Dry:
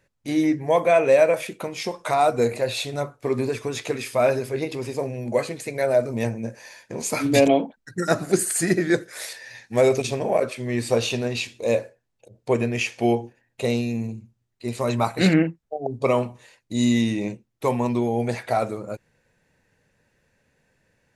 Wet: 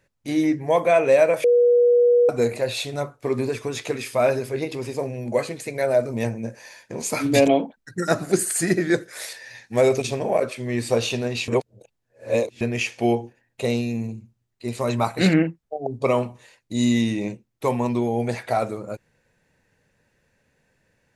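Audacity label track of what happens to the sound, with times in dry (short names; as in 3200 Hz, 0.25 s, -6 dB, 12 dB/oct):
1.440000	2.290000	bleep 483 Hz -12.5 dBFS
11.480000	12.610000	reverse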